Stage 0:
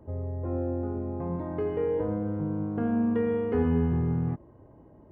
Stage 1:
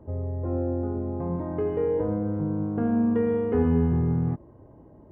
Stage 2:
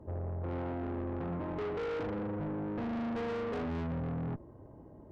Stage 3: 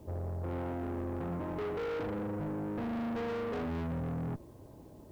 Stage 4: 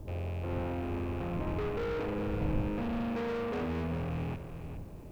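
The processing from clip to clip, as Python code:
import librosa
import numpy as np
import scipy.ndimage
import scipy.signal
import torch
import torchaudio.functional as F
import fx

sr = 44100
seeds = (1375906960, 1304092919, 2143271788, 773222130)

y1 = fx.high_shelf(x, sr, hz=2200.0, db=-9.0)
y1 = y1 * librosa.db_to_amplitude(3.0)
y2 = fx.tube_stage(y1, sr, drive_db=34.0, bias=0.5)
y3 = fx.quant_dither(y2, sr, seeds[0], bits=12, dither='triangular')
y4 = fx.rattle_buzz(y3, sr, strikes_db=-43.0, level_db=-41.0)
y4 = fx.dmg_wind(y4, sr, seeds[1], corner_hz=110.0, level_db=-42.0)
y4 = fx.echo_feedback(y4, sr, ms=411, feedback_pct=32, wet_db=-10)
y4 = y4 * librosa.db_to_amplitude(1.0)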